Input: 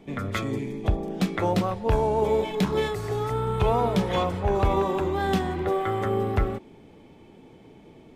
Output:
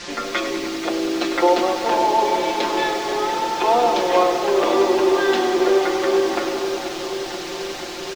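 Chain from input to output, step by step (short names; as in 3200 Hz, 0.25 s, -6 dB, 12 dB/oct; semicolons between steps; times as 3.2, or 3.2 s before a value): steep high-pass 240 Hz 96 dB/oct; requantised 6-bit, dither triangular; LPF 5800 Hz 24 dB/oct; comb 5.7 ms, depth 94%; darkening echo 0.484 s, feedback 77%, low-pass 3500 Hz, level -10.5 dB; lo-fi delay 98 ms, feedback 80%, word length 7-bit, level -10 dB; gain +4.5 dB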